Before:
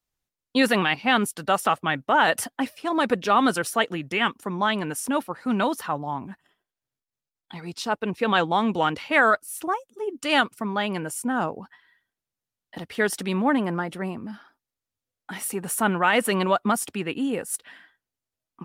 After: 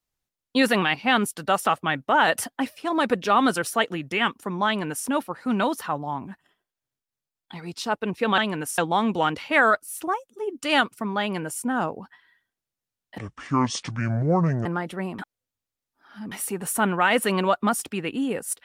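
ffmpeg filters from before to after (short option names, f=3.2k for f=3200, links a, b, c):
-filter_complex "[0:a]asplit=7[a][b][c][d][e][f][g];[a]atrim=end=8.382[h];[b]atrim=start=4.668:end=5.072[i];[c]atrim=start=8.378:end=12.784[j];[d]atrim=start=12.78:end=13.68,asetpts=PTS-STARTPTS,asetrate=26901,aresample=44100[k];[e]atrim=start=13.676:end=14.212[l];[f]atrim=start=14.208:end=15.342,asetpts=PTS-STARTPTS,areverse[m];[g]atrim=start=15.338[n];[h][i]acrossfade=d=0.004:c1=hsin:c2=hsin[o];[o][j]acrossfade=d=0.004:c1=hsin:c2=hsin[p];[p][k]acrossfade=d=0.004:c1=hsin:c2=hsin[q];[q][l]acrossfade=d=0.004:c1=hsin:c2=hsin[r];[r][m]acrossfade=d=0.004:c1=hsin:c2=hsin[s];[s][n]acrossfade=d=0.004:c1=hsin:c2=hsin"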